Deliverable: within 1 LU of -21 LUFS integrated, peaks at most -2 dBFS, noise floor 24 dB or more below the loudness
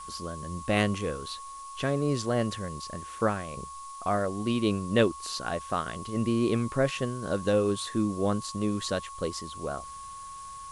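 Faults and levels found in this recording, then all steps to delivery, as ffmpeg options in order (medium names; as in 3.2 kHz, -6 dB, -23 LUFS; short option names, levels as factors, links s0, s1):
steady tone 1.1 kHz; tone level -40 dBFS; noise floor -42 dBFS; noise floor target -54 dBFS; loudness -30.0 LUFS; peak level -8.5 dBFS; loudness target -21.0 LUFS
-> -af "bandreject=f=1100:w=30"
-af "afftdn=nr=12:nf=-42"
-af "volume=2.82,alimiter=limit=0.794:level=0:latency=1"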